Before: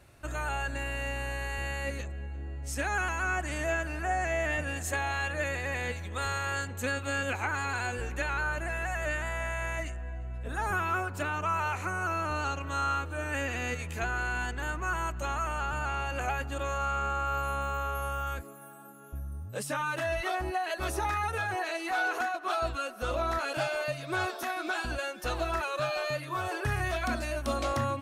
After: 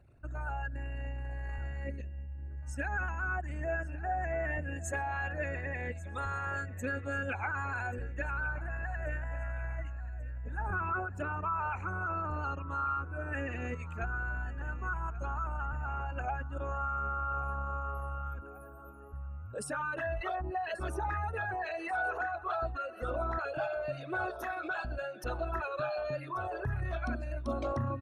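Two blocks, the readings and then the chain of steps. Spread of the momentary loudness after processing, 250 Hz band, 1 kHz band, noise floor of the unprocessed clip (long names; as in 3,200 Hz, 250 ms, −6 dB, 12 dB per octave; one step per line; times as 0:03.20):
6 LU, −4.0 dB, −4.0 dB, −41 dBFS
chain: spectral envelope exaggerated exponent 2
on a send: repeating echo 1,136 ms, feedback 53%, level −17.5 dB
on the sum: level −3.5 dB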